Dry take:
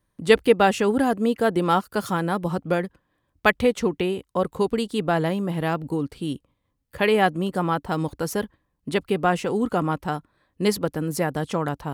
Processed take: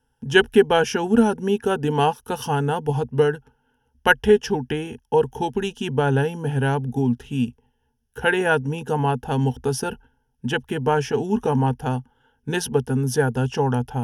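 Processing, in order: ripple EQ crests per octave 1.1, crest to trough 15 dB; varispeed -15%

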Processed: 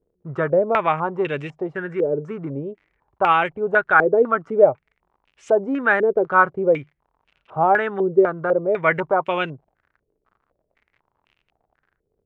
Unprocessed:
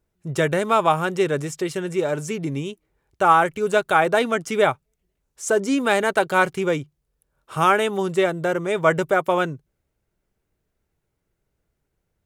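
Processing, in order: crackle 71/s -42 dBFS; stepped low-pass 4 Hz 450–2700 Hz; gain -3.5 dB

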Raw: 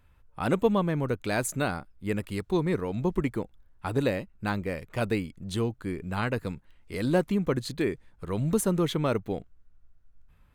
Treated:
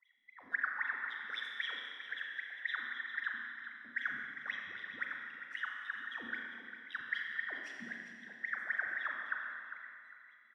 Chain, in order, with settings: band inversion scrambler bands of 2000 Hz; passive tone stack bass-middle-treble 6-0-2; notch 1200 Hz, Q 9.1; in parallel at -0.5 dB: compressor, threshold -54 dBFS, peak gain reduction 14.5 dB; on the sum: sample leveller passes 1; wah 3.8 Hz 220–3400 Hz, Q 19; on a send: feedback echo 0.401 s, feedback 27%, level -11 dB; on the sum: Schroeder reverb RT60 2.1 s, combs from 30 ms, DRR 0.5 dB; gain +15.5 dB

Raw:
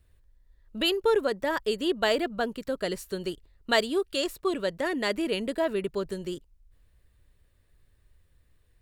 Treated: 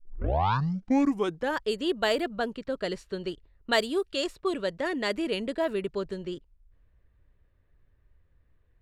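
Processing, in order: tape start at the beginning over 1.60 s; low-pass opened by the level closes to 1900 Hz, open at -21.5 dBFS; gain -1 dB

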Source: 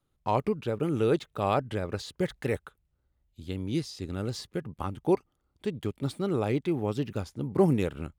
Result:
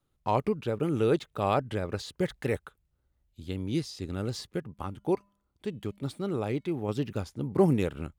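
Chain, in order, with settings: 4.6–6.89 resonator 200 Hz, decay 0.59 s, harmonics odd, mix 30%

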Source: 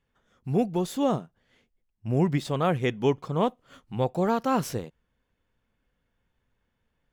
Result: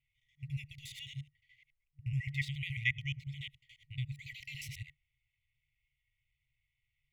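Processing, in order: local time reversal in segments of 71 ms; three-band isolator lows -17 dB, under 230 Hz, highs -20 dB, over 2300 Hz; FFT band-reject 140–1900 Hz; gain +8 dB

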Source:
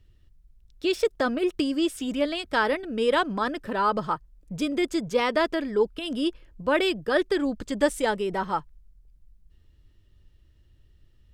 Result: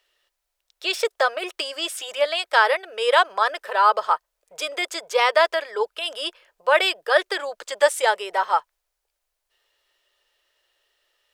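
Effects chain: inverse Chebyshev high-pass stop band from 270 Hz, stop band 40 dB; gain +7.5 dB

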